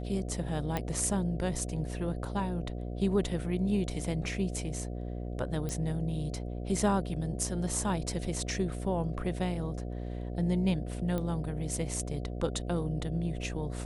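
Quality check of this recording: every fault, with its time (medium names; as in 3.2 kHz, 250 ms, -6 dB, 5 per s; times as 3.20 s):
buzz 60 Hz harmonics 12 -37 dBFS
0.77 s: pop -17 dBFS
5.69 s: pop -22 dBFS
11.18 s: pop -21 dBFS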